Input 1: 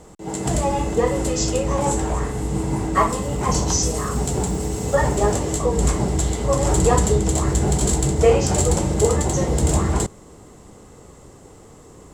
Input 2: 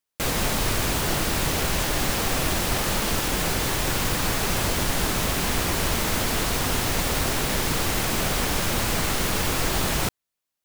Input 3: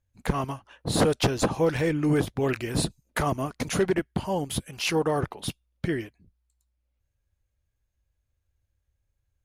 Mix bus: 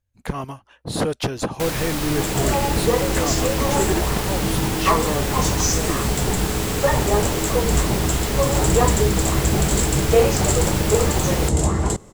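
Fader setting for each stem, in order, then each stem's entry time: -0.5 dB, -2.0 dB, -0.5 dB; 1.90 s, 1.40 s, 0.00 s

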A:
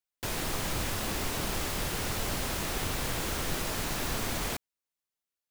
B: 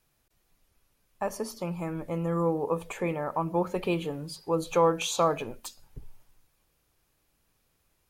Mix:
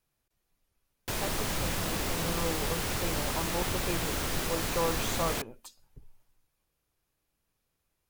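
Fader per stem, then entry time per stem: +0.5 dB, -8.0 dB; 0.85 s, 0.00 s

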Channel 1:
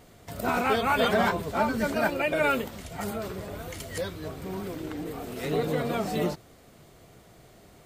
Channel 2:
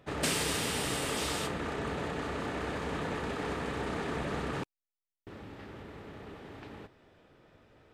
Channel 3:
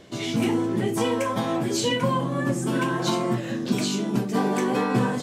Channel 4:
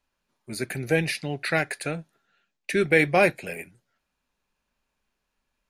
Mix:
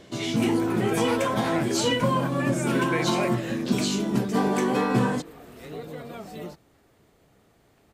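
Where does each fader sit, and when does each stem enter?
-10.0 dB, -17.5 dB, 0.0 dB, -11.0 dB; 0.20 s, 1.15 s, 0.00 s, 0.00 s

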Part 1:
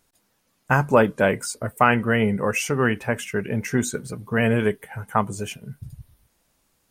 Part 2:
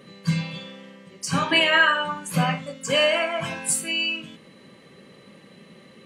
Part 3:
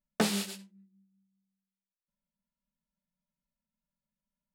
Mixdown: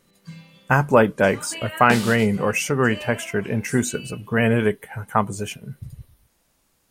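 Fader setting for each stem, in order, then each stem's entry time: +1.5 dB, -16.5 dB, +2.0 dB; 0.00 s, 0.00 s, 1.70 s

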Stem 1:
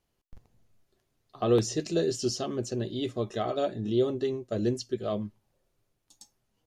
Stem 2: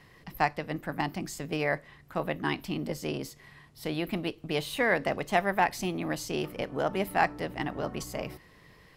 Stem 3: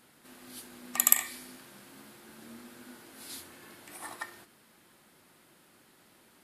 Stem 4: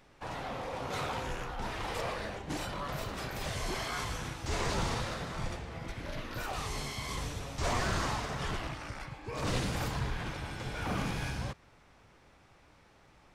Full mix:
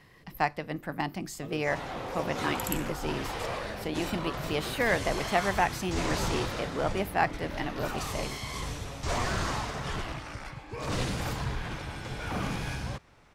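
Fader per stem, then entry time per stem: -19.0 dB, -1.0 dB, -14.0 dB, +1.5 dB; 0.00 s, 0.00 s, 1.60 s, 1.45 s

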